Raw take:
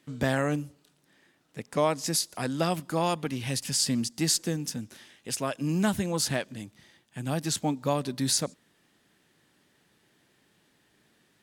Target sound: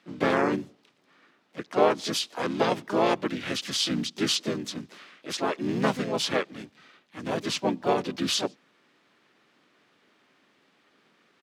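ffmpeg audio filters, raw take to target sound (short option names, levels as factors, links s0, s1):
-filter_complex "[0:a]acrusher=bits=9:mode=log:mix=0:aa=0.000001,asplit=4[s0][s1][s2][s3];[s1]asetrate=29433,aresample=44100,atempo=1.49831,volume=0.891[s4];[s2]asetrate=35002,aresample=44100,atempo=1.25992,volume=0.794[s5];[s3]asetrate=55563,aresample=44100,atempo=0.793701,volume=0.562[s6];[s0][s4][s5][s6]amix=inputs=4:normalize=0,acrossover=split=200 5100:gain=0.0708 1 0.158[s7][s8][s9];[s7][s8][s9]amix=inputs=3:normalize=0"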